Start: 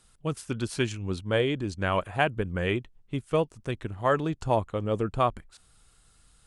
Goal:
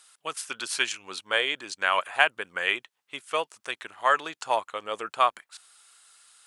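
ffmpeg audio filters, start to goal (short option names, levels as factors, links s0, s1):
-af "highpass=1100,volume=2.51"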